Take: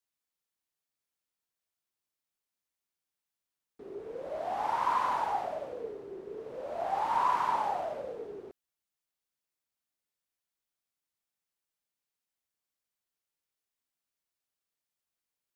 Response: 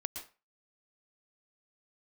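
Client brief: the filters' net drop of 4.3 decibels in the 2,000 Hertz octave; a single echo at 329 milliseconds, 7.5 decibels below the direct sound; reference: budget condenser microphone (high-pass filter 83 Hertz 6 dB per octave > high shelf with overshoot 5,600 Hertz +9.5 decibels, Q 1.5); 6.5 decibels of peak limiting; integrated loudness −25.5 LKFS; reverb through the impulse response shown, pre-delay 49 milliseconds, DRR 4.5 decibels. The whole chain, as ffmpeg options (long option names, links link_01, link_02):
-filter_complex "[0:a]equalizer=frequency=2000:width_type=o:gain=-5,alimiter=limit=-24dB:level=0:latency=1,aecho=1:1:329:0.422,asplit=2[link_01][link_02];[1:a]atrim=start_sample=2205,adelay=49[link_03];[link_02][link_03]afir=irnorm=-1:irlink=0,volume=-4.5dB[link_04];[link_01][link_04]amix=inputs=2:normalize=0,highpass=frequency=83:poles=1,highshelf=frequency=5600:width_type=q:width=1.5:gain=9.5,volume=8dB"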